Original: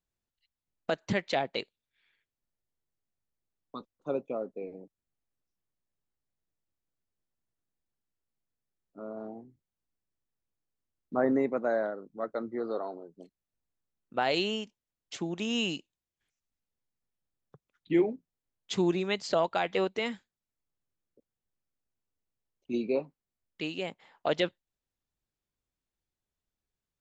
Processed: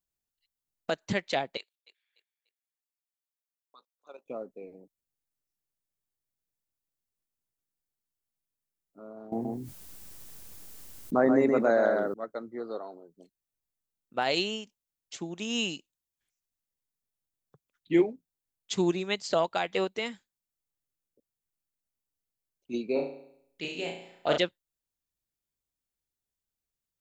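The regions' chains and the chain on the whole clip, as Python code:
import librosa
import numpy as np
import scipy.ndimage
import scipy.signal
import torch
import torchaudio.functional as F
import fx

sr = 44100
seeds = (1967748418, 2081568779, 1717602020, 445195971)

y = fx.chain(x, sr, fx.highpass(hz=860.0, slope=12),
    fx.level_steps(step_db=10),
    fx.echo_feedback(ms=294, feedback_pct=32, wet_db=-15.0), at=(1.57, 4.26))
y = fx.chain(y, sr, fx.echo_single(ms=128, db=-6.0),
    fx.env_flatten(amount_pct=70), at=(9.32, 12.14))
y = fx.chain(y, sr, fx.notch(hz=1100.0, q=11.0),
    fx.room_flutter(wall_m=5.9, rt60_s=0.71), at=(22.93, 24.38))
y = fx.high_shelf(y, sr, hz=5700.0, db=11.5)
y = fx.upward_expand(y, sr, threshold_db=-36.0, expansion=1.5)
y = y * 10.0 ** (2.5 / 20.0)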